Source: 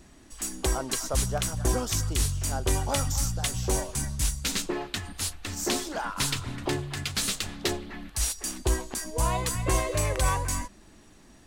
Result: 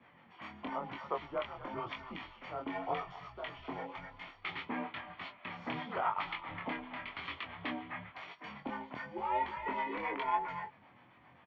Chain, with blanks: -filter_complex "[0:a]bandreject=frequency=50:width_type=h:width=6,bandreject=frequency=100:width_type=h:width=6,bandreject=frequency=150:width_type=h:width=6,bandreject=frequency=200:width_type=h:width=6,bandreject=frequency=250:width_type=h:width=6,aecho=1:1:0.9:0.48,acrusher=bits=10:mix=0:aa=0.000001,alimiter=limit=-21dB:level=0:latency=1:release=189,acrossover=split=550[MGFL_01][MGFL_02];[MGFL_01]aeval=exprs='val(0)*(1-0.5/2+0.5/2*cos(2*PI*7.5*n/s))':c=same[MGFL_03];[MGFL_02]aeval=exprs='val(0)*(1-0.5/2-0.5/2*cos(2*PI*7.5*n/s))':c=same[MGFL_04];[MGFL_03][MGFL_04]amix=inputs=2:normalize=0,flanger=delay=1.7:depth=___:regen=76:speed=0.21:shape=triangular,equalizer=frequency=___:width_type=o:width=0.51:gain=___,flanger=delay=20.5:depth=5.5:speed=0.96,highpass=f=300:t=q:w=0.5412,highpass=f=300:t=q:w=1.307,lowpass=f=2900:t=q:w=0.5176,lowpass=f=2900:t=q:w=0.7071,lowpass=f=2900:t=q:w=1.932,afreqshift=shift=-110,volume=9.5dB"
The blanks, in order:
4.1, 300, -7